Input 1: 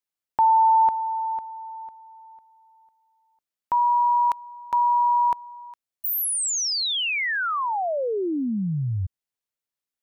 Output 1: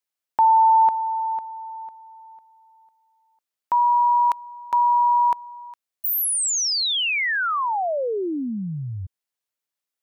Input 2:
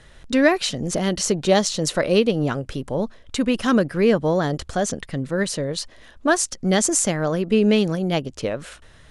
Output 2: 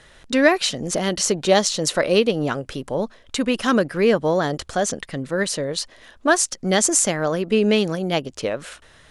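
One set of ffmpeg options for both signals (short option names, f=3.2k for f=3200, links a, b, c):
-af "lowshelf=f=220:g=-9,volume=2.5dB"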